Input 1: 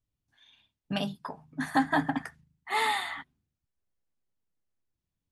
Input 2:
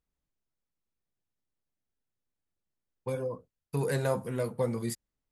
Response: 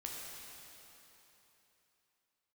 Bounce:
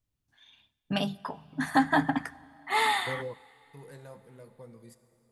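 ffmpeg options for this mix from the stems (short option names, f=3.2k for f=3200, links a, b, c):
-filter_complex "[0:a]volume=1.5dB,asplit=3[a][b][c];[b]volume=-19.5dB[d];[1:a]volume=-4dB,asplit=2[e][f];[f]volume=-24dB[g];[c]apad=whole_len=234527[h];[e][h]sidechaingate=range=-17dB:threshold=-53dB:ratio=16:detection=peak[i];[2:a]atrim=start_sample=2205[j];[d][g]amix=inputs=2:normalize=0[k];[k][j]afir=irnorm=-1:irlink=0[l];[a][i][l]amix=inputs=3:normalize=0"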